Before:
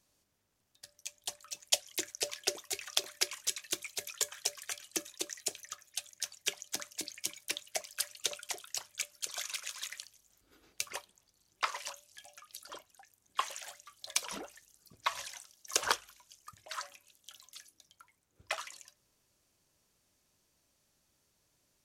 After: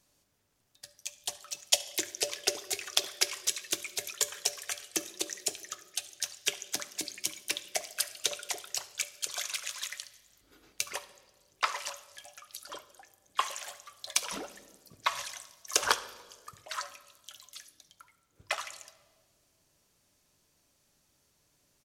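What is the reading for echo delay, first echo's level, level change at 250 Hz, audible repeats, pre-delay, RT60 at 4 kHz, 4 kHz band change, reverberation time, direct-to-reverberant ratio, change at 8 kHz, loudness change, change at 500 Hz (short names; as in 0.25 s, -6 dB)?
71 ms, -20.5 dB, +3.5 dB, 2, 7 ms, 1.3 s, +4.0 dB, 1.7 s, 11.5 dB, +3.5 dB, +3.5 dB, +4.0 dB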